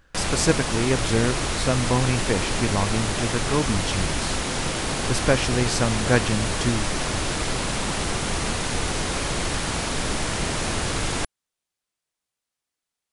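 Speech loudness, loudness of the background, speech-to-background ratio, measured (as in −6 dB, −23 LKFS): −25.0 LKFS, −25.5 LKFS, 0.5 dB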